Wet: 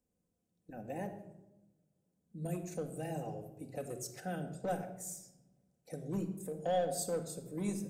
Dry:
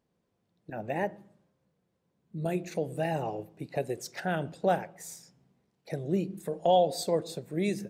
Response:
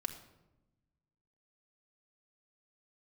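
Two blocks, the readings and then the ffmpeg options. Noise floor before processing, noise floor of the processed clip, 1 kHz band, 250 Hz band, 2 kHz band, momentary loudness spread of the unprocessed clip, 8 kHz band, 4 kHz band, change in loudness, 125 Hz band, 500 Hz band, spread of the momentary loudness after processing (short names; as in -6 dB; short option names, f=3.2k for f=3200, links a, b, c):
-78 dBFS, -83 dBFS, -10.5 dB, -6.5 dB, -11.5 dB, 16 LU, +0.5 dB, -11.0 dB, -8.5 dB, -6.0 dB, -9.0 dB, 15 LU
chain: -filter_complex "[0:a]equalizer=f=125:t=o:w=1:g=-4,equalizer=f=250:t=o:w=1:g=-4,equalizer=f=500:t=o:w=1:g=-3,equalizer=f=1k:t=o:w=1:g=-11,equalizer=f=2k:t=o:w=1:g=-9,equalizer=f=4k:t=o:w=1:g=-11,equalizer=f=8k:t=o:w=1:g=6,acrossover=split=210|650|4900[a][b][c][d];[b]asoftclip=type=hard:threshold=-34.5dB[e];[a][e][c][d]amix=inputs=4:normalize=0[f];[1:a]atrim=start_sample=2205[g];[f][g]afir=irnorm=-1:irlink=0,volume=-1.5dB"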